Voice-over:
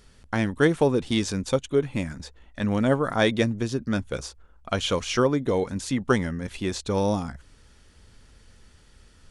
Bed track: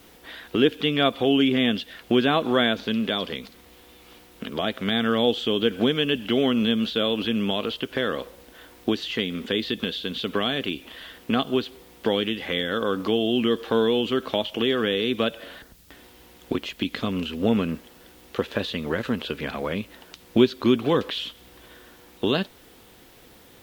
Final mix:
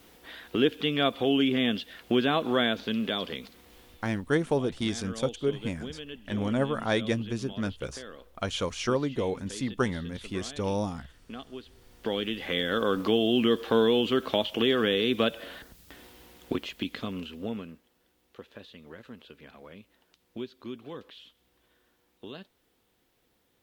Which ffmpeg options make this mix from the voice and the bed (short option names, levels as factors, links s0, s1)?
-filter_complex "[0:a]adelay=3700,volume=0.531[s0];[1:a]volume=4.22,afade=t=out:st=3.78:d=0.54:silence=0.199526,afade=t=in:st=11.64:d=1.1:silence=0.141254,afade=t=out:st=16.06:d=1.72:silence=0.11885[s1];[s0][s1]amix=inputs=2:normalize=0"